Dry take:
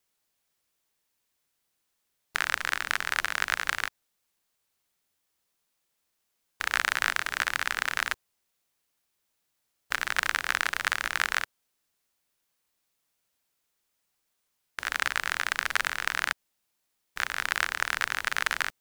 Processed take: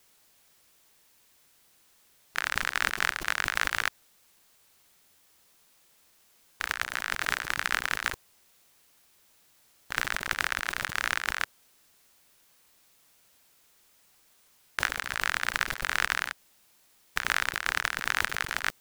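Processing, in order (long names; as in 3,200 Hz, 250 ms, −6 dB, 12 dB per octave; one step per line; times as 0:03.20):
compressor whose output falls as the input rises −39 dBFS, ratio −1
level +7 dB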